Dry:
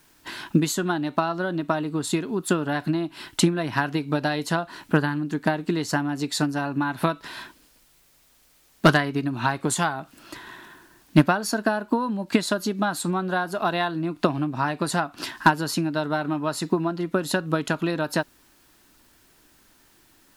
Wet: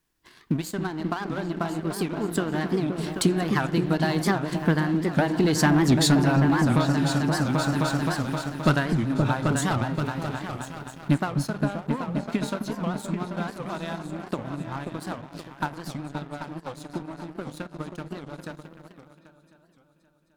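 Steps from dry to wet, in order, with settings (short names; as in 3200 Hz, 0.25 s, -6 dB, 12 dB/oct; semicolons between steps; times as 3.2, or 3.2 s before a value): Doppler pass-by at 5.87, 18 m/s, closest 5.8 m; repeats that get brighter 0.262 s, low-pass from 200 Hz, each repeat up 2 oct, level -3 dB; in parallel at -1 dB: compressor, threshold -42 dBFS, peak gain reduction 20.5 dB; on the sum: low shelf 140 Hz +9.5 dB; on a send at -15 dB: reverb RT60 1.4 s, pre-delay 20 ms; on the sum: sample leveller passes 2; vocal rider within 3 dB 0.5 s; record warp 78 rpm, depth 250 cents; gain +1.5 dB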